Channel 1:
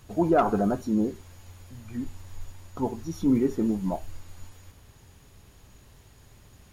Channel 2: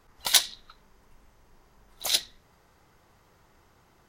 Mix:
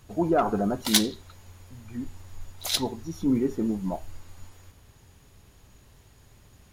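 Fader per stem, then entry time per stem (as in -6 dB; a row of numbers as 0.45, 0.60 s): -1.5, -2.0 dB; 0.00, 0.60 s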